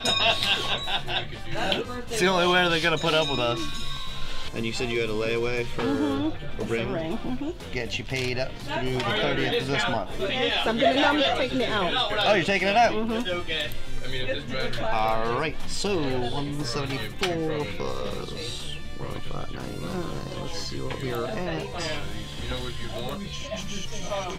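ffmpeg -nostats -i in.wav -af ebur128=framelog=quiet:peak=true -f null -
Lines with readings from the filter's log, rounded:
Integrated loudness:
  I:         -26.5 LUFS
  Threshold: -36.6 LUFS
Loudness range:
  LRA:         9.1 LU
  Threshold: -46.6 LUFS
  LRA low:   -32.1 LUFS
  LRA high:  -23.0 LUFS
True peak:
  Peak:       -6.7 dBFS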